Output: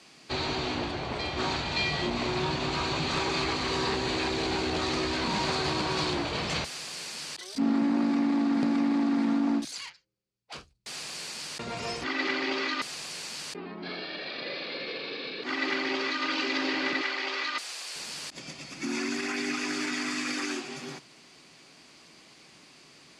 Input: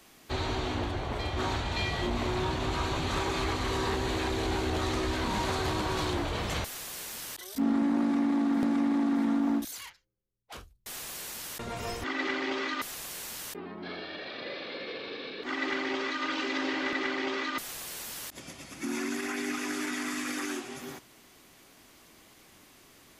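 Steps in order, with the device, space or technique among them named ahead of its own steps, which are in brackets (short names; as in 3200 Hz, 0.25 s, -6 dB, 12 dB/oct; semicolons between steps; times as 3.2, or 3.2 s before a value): car door speaker (speaker cabinet 87–8800 Hz, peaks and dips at 97 Hz -10 dB, 150 Hz +6 dB, 2500 Hz +5 dB, 4600 Hz +9 dB); 17.01–17.96 Bessel high-pass 630 Hz, order 2; gain +1 dB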